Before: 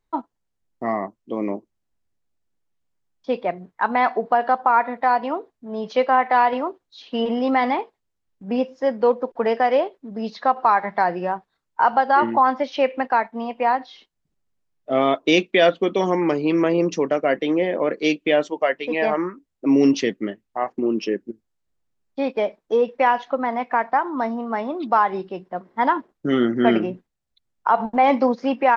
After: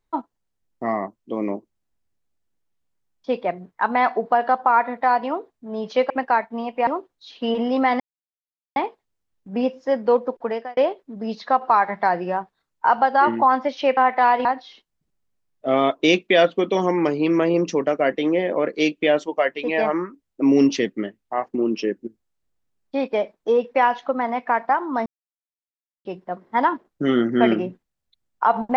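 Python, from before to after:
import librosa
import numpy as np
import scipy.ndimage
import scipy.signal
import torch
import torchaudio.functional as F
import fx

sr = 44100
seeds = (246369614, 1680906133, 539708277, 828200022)

y = fx.edit(x, sr, fx.swap(start_s=6.1, length_s=0.48, other_s=12.92, other_length_s=0.77),
    fx.insert_silence(at_s=7.71, length_s=0.76),
    fx.fade_out_span(start_s=9.27, length_s=0.45),
    fx.silence(start_s=24.3, length_s=0.99), tone=tone)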